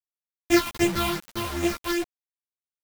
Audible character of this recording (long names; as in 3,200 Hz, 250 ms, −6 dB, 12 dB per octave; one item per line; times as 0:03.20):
a buzz of ramps at a fixed pitch in blocks of 128 samples
phaser sweep stages 6, 2.6 Hz, lowest notch 440–1,300 Hz
a quantiser's noise floor 6 bits, dither none
a shimmering, thickened sound